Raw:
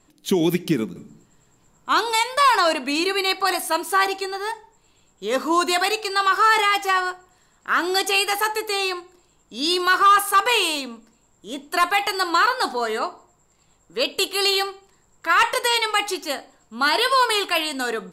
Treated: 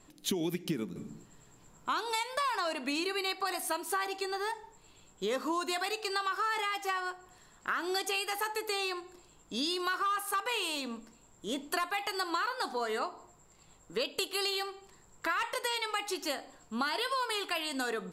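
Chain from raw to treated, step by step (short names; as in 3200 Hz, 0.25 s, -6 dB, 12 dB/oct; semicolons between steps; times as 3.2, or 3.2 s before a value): compressor 6:1, threshold -31 dBFS, peak gain reduction 17.5 dB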